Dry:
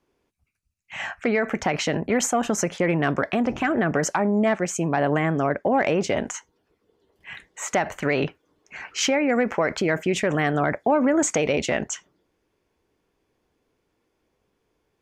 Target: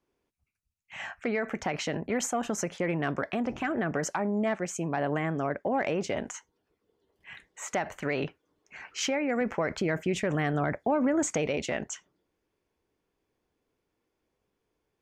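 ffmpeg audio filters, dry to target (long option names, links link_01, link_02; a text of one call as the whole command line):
ffmpeg -i in.wav -filter_complex "[0:a]asettb=1/sr,asplit=3[link_01][link_02][link_03];[link_01]atrim=end=9.414[link_04];[link_02]atrim=start=9.41:end=11.47,asetpts=PTS-STARTPTS,afade=type=in:duration=0.004:curve=qsin,afade=type=out:start_time=2.056:duration=0.004:curve=qsin,lowshelf=frequency=180:gain=7.5[link_05];[link_03]atrim=start=11.466[link_06];[link_04][link_05]acrossfade=duration=0.004:curve1=hsin:curve2=qsin[link_07];[link_07][link_06]acrossfade=duration=0.004:curve1=qsin:curve2=hsin,volume=-7.5dB" out.wav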